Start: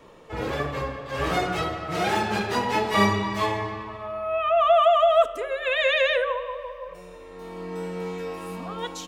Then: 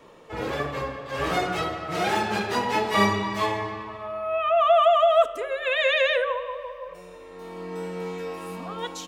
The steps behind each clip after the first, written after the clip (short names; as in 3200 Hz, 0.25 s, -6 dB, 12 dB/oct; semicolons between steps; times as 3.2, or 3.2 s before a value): low shelf 100 Hz -7.5 dB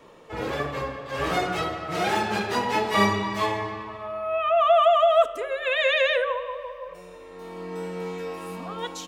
nothing audible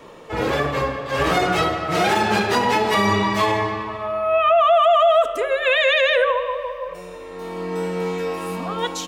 limiter -17 dBFS, peak gain reduction 10 dB; gain +8 dB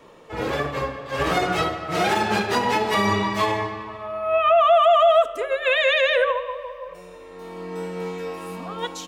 upward expander 1.5:1, over -25 dBFS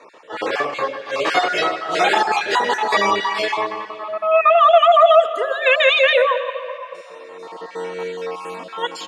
random spectral dropouts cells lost 27%; BPF 440–7000 Hz; on a send at -16.5 dB: reverb RT60 3.2 s, pre-delay 0.114 s; on the sum: gain +6.5 dB